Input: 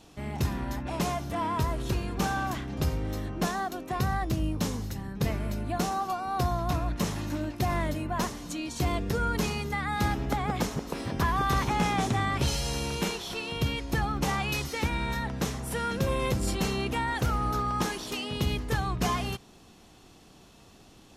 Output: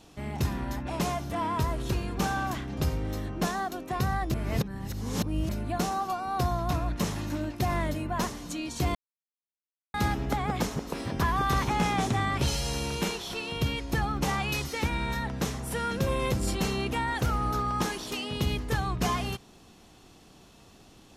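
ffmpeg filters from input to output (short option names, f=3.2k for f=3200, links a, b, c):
-filter_complex "[0:a]asplit=5[a][b][c][d][e];[a]atrim=end=4.342[f];[b]atrim=start=4.338:end=5.492,asetpts=PTS-STARTPTS,areverse[g];[c]atrim=start=5.488:end=8.95,asetpts=PTS-STARTPTS,afade=t=out:st=3.458:d=0.004:c=hsin[h];[d]atrim=start=8.95:end=9.94,asetpts=PTS-STARTPTS,volume=0[i];[e]atrim=start=9.94,asetpts=PTS-STARTPTS,afade=t=in:d=0.004:c=hsin[j];[f][g]acrossfade=d=0.004:c1=hsin:c2=hsin[k];[h][i][j]concat=n=3:v=0:a=1[l];[k][l]acrossfade=d=0.004:c1=hsin:c2=hsin"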